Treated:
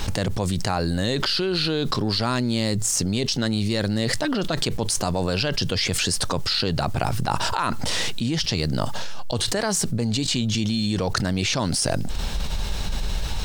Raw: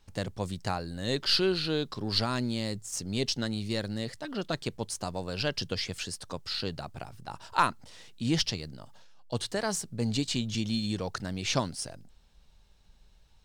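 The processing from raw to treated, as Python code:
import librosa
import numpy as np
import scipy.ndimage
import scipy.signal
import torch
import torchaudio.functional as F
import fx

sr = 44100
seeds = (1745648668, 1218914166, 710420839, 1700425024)

y = fx.env_flatten(x, sr, amount_pct=100)
y = F.gain(torch.from_numpy(y), -3.0).numpy()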